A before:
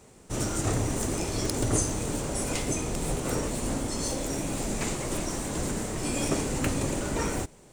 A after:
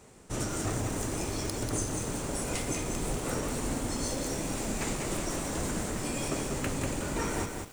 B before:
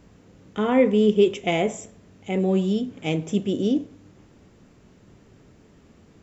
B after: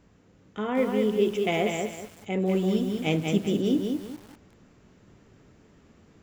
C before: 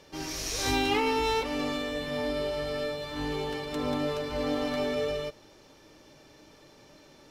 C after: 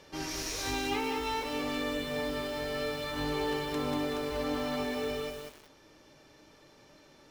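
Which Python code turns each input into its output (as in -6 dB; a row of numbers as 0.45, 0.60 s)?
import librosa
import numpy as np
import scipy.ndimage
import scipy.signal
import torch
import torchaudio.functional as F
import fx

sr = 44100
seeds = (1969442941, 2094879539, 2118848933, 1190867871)

y = fx.peak_eq(x, sr, hz=1500.0, db=2.5, octaves=1.4)
y = fx.rider(y, sr, range_db=4, speed_s=0.5)
y = fx.echo_crushed(y, sr, ms=192, feedback_pct=35, bits=7, wet_db=-4)
y = y * librosa.db_to_amplitude(-4.5)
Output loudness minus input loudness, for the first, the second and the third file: -3.0, -4.0, -3.0 LU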